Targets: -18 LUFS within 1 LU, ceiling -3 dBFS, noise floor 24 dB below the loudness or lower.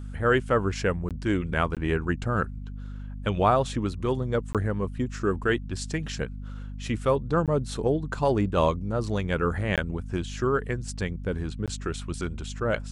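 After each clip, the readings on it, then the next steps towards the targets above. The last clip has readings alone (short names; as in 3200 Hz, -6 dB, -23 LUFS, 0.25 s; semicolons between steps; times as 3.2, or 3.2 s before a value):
dropouts 6; longest dropout 17 ms; hum 50 Hz; harmonics up to 250 Hz; hum level -34 dBFS; loudness -27.5 LUFS; peak -9.0 dBFS; loudness target -18.0 LUFS
-> interpolate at 1.09/1.75/4.53/7.46/9.76/11.66, 17 ms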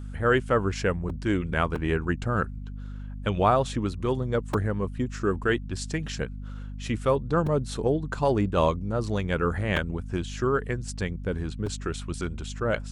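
dropouts 0; hum 50 Hz; harmonics up to 250 Hz; hum level -34 dBFS
-> de-hum 50 Hz, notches 5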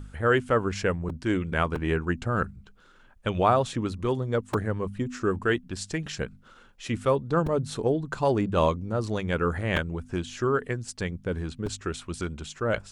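hum none; loudness -28.0 LUFS; peak -8.0 dBFS; loudness target -18.0 LUFS
-> gain +10 dB; limiter -3 dBFS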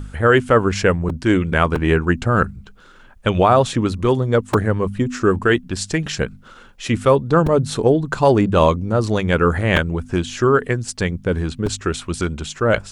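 loudness -18.5 LUFS; peak -3.0 dBFS; noise floor -45 dBFS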